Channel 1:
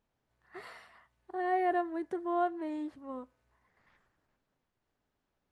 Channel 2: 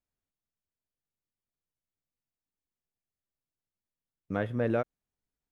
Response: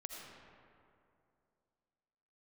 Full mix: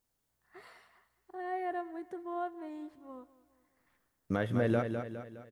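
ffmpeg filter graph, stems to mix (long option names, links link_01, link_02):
-filter_complex "[0:a]highshelf=frequency=3200:gain=-7.5,volume=-6.5dB,asplit=2[link_01][link_02];[link_02]volume=-19dB[link_03];[1:a]bandreject=frequency=2500:width=12,alimiter=limit=-22.5dB:level=0:latency=1:release=172,volume=2.5dB,asplit=2[link_04][link_05];[link_05]volume=-7dB[link_06];[link_03][link_06]amix=inputs=2:normalize=0,aecho=0:1:206|412|618|824|1030|1236|1442:1|0.47|0.221|0.104|0.0488|0.0229|0.0108[link_07];[link_01][link_04][link_07]amix=inputs=3:normalize=0,highshelf=frequency=4000:gain=10.5"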